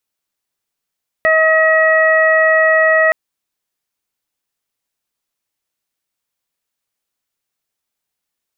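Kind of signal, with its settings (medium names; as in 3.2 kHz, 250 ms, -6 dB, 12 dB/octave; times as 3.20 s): steady additive tone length 1.87 s, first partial 637 Hz, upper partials -7/0.5/-19 dB, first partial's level -12 dB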